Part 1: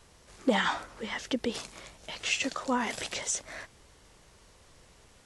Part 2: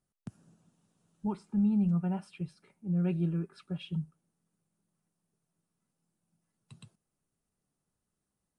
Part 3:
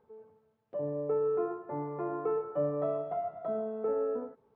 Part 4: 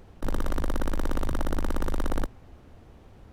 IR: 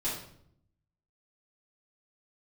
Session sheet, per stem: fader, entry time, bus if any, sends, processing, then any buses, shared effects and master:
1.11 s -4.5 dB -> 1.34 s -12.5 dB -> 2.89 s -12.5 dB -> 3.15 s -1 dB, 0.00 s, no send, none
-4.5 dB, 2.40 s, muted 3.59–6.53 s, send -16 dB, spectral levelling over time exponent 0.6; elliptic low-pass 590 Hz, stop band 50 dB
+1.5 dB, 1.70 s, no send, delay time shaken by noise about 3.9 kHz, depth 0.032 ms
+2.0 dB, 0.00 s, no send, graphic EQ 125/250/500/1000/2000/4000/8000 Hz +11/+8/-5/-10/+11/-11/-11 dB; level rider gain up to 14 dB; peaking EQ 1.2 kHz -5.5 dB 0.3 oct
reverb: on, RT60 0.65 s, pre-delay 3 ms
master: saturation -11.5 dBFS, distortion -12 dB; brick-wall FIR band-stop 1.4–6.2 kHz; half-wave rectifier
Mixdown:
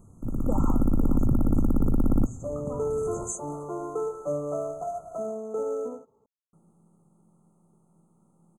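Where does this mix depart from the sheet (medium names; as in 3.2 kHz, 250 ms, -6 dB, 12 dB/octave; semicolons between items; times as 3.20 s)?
stem 2: missing elliptic low-pass 590 Hz, stop band 50 dB; stem 4 +2.0 dB -> -8.0 dB; master: missing half-wave rectifier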